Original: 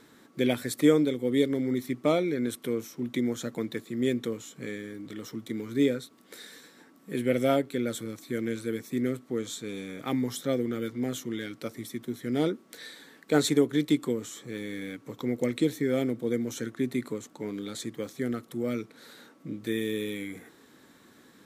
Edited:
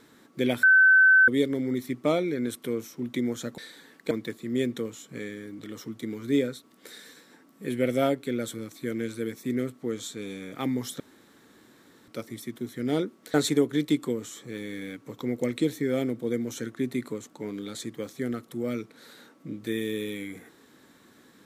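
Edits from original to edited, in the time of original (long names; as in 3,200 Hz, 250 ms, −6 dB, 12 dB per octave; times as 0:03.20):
0:00.63–0:01.28: beep over 1,530 Hz −13.5 dBFS
0:10.47–0:11.55: fill with room tone
0:12.81–0:13.34: move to 0:03.58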